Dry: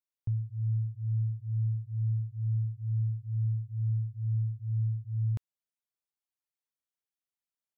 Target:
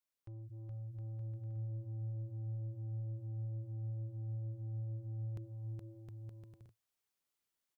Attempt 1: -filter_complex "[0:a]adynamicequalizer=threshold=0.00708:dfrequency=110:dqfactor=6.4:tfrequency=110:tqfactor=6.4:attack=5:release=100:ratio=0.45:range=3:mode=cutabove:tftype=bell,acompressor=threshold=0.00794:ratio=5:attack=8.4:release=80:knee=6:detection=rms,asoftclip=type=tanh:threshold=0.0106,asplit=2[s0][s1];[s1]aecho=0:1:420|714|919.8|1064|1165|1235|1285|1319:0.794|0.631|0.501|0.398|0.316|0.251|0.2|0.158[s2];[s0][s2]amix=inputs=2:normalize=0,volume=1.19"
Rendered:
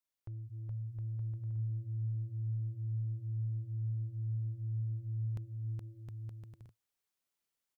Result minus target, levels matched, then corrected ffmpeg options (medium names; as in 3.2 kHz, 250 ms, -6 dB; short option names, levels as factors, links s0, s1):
saturation: distortion -10 dB
-filter_complex "[0:a]adynamicequalizer=threshold=0.00708:dfrequency=110:dqfactor=6.4:tfrequency=110:tqfactor=6.4:attack=5:release=100:ratio=0.45:range=3:mode=cutabove:tftype=bell,acompressor=threshold=0.00794:ratio=5:attack=8.4:release=80:knee=6:detection=rms,asoftclip=type=tanh:threshold=0.00422,asplit=2[s0][s1];[s1]aecho=0:1:420|714|919.8|1064|1165|1235|1285|1319:0.794|0.631|0.501|0.398|0.316|0.251|0.2|0.158[s2];[s0][s2]amix=inputs=2:normalize=0,volume=1.19"